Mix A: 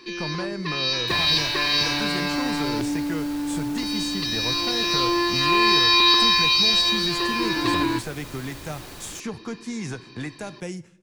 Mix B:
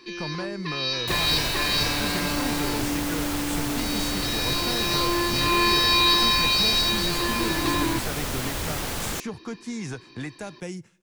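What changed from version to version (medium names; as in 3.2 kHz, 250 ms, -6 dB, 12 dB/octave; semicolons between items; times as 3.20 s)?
speech: send -10.5 dB; first sound -3.0 dB; second sound +11.5 dB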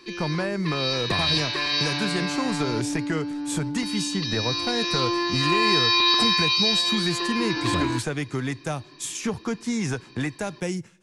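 speech +6.5 dB; second sound: muted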